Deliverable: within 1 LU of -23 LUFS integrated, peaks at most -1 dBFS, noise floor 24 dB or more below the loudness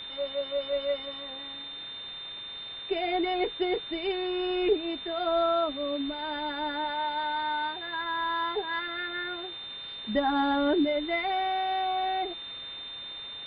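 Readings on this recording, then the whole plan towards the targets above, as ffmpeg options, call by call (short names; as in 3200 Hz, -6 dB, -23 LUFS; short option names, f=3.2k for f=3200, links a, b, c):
steady tone 3600 Hz; tone level -38 dBFS; noise floor -41 dBFS; noise floor target -54 dBFS; loudness -30.0 LUFS; peak -14.5 dBFS; loudness target -23.0 LUFS
-> -af "bandreject=f=3.6k:w=30"
-af "afftdn=nr=13:nf=-41"
-af "volume=7dB"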